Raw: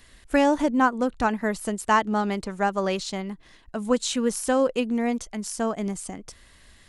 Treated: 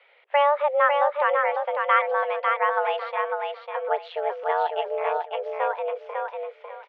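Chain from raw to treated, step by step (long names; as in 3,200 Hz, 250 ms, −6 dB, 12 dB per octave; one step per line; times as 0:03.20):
single-sideband voice off tune +290 Hz 160–2,800 Hz
0:03.88–0:05.26: ring modulation 83 Hz
repeating echo 549 ms, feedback 25%, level −4 dB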